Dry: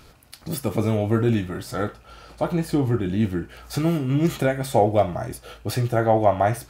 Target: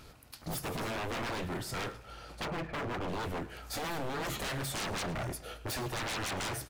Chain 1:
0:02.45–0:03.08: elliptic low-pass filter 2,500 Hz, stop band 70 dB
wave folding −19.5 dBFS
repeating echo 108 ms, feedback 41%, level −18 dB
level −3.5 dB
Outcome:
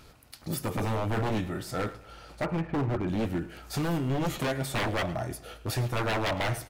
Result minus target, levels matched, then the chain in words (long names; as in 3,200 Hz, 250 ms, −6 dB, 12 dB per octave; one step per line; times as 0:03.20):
wave folding: distortion −16 dB
0:02.45–0:03.08: elliptic low-pass filter 2,500 Hz, stop band 70 dB
wave folding −27.5 dBFS
repeating echo 108 ms, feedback 41%, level −18 dB
level −3.5 dB